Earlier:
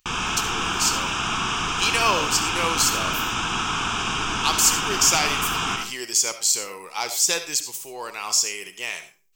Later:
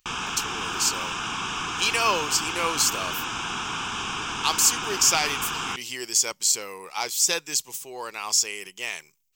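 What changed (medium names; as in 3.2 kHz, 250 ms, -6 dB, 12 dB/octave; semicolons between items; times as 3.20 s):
background: add bass shelf 210 Hz -6 dB; reverb: off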